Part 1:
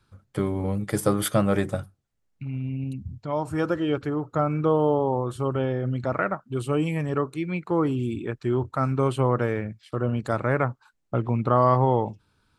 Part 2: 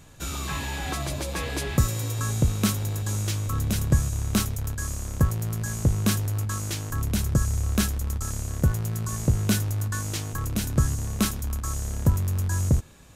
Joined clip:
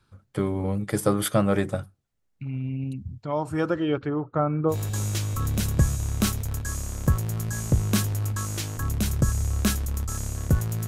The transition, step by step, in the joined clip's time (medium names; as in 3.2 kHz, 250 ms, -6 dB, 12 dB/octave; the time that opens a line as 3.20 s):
part 1
3.70–4.76 s: low-pass 7.6 kHz -> 1 kHz
4.72 s: go over to part 2 from 2.85 s, crossfade 0.08 s